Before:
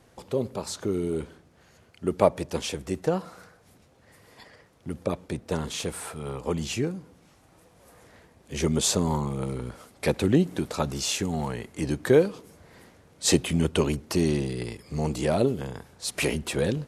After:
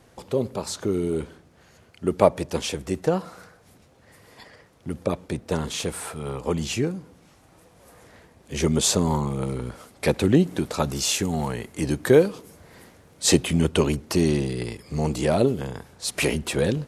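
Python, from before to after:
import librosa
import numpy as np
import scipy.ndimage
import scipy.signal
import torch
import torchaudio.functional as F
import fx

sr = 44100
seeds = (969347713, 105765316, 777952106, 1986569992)

y = fx.high_shelf(x, sr, hz=11000.0, db=7.5, at=(10.79, 13.26))
y = y * 10.0 ** (3.0 / 20.0)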